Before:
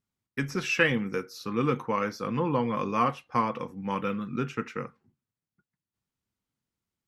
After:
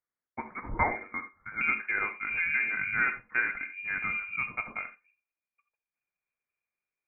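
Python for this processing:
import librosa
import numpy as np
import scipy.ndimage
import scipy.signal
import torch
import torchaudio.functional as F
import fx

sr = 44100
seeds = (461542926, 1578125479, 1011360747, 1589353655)

y = fx.highpass(x, sr, hz=fx.steps((0.0, 460.0), (1.61, 120.0)), slope=24)
y = fx.rev_gated(y, sr, seeds[0], gate_ms=100, shape='rising', drr_db=10.0)
y = fx.freq_invert(y, sr, carrier_hz=2600)
y = F.gain(torch.from_numpy(y), -2.5).numpy()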